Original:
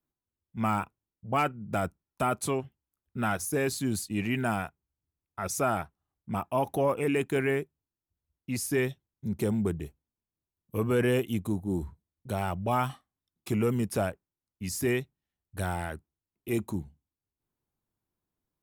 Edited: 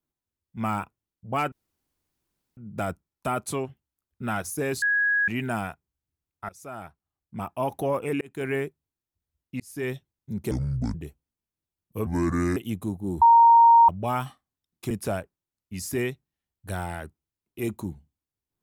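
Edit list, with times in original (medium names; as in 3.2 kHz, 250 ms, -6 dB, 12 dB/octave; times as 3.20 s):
1.52 s: insert room tone 1.05 s
3.77–4.23 s: bleep 1.66 kHz -19.5 dBFS
5.44–6.58 s: fade in, from -22 dB
7.16–7.47 s: fade in
8.55–8.90 s: fade in
9.46–9.73 s: speed 62%
10.85–11.20 s: speed 70%
11.85–12.52 s: bleep 929 Hz -11 dBFS
13.54–13.80 s: delete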